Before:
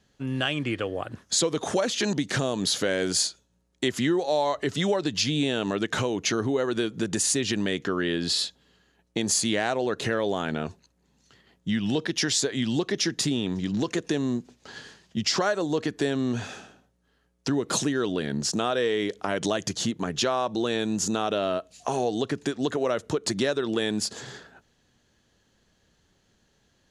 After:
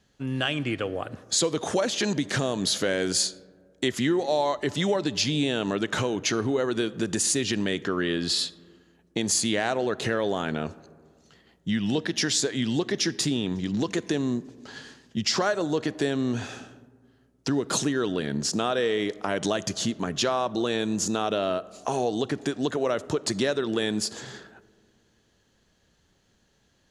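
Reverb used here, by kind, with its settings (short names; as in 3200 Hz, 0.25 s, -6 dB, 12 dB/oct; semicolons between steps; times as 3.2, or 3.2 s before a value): digital reverb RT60 2.1 s, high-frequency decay 0.3×, pre-delay 10 ms, DRR 19 dB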